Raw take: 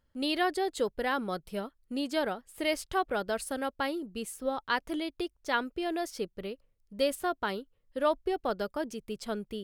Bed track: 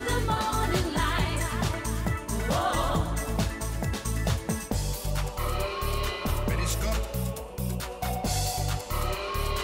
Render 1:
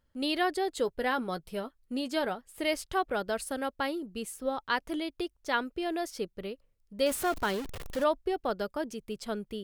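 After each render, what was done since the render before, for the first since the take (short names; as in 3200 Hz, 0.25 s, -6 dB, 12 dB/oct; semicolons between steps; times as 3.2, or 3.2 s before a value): 0.84–2.36 doubler 12 ms -11.5 dB; 7.06–8.04 zero-crossing step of -33.5 dBFS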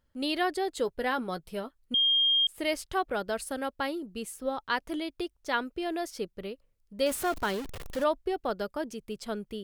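1.94–2.47 bleep 3220 Hz -21 dBFS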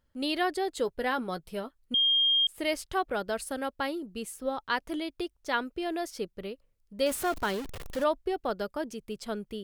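nothing audible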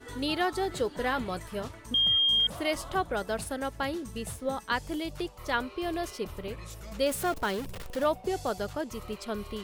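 add bed track -15.5 dB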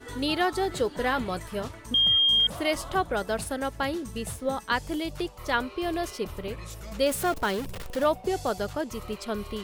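gain +3 dB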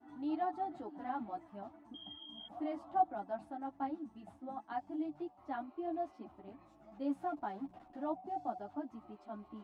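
double band-pass 470 Hz, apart 1.3 oct; ensemble effect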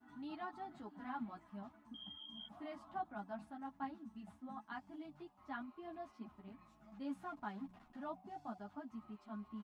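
band shelf 500 Hz -10 dB; comb 4.8 ms, depth 39%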